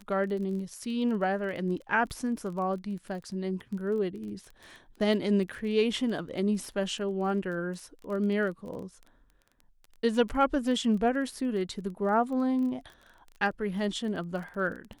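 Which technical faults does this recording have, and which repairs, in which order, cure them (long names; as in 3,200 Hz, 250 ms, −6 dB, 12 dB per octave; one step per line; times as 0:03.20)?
surface crackle 20 per second −37 dBFS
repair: click removal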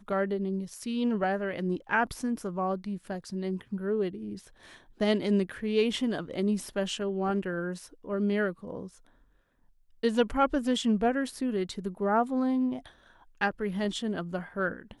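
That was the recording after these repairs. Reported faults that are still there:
none of them is left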